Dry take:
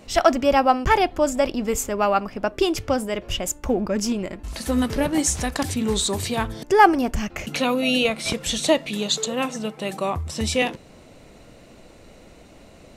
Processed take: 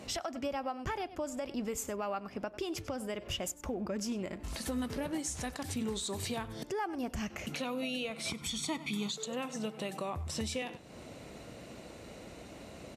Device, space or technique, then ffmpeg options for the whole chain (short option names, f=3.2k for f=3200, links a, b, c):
podcast mastering chain: -filter_complex "[0:a]asettb=1/sr,asplit=3[a][b][c];[a]atrim=end=8.304[d];[b]atrim=start=8.3:end=9.11,asetpts=PTS-STARTPTS,afade=t=in:d=0.004:c=qsin,afade=t=out:st=0.806:d=0.004:c=qsin,aecho=1:1:0.9:0.88,atrim=end_sample=35721[e];[c]atrim=start=9.106[f];[d][e]acrossfade=d=0.004:c1=hsin:c2=qsin[g];[g][f]acrossfade=d=0.004:c1=qsin:c2=hsin,highpass=64,aecho=1:1:96:0.1,acompressor=threshold=-37dB:ratio=2.5,alimiter=level_in=2dB:limit=-24dB:level=0:latency=1:release=162,volume=-2dB" -ar 32000 -c:a libmp3lame -b:a 96k